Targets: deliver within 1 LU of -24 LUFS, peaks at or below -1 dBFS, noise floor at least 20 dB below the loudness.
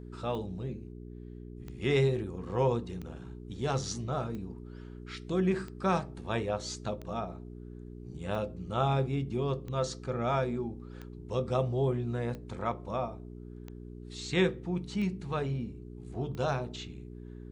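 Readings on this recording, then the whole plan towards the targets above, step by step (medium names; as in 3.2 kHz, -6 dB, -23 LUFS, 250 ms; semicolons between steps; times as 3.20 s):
clicks found 13; hum 60 Hz; highest harmonic 420 Hz; hum level -42 dBFS; loudness -33.0 LUFS; peak level -16.0 dBFS; loudness target -24.0 LUFS
-> de-click; de-hum 60 Hz, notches 7; trim +9 dB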